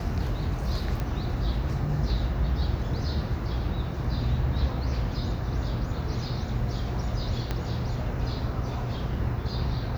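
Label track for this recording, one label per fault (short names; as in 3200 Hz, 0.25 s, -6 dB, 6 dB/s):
1.000000	1.000000	pop -18 dBFS
7.510000	7.510000	pop -15 dBFS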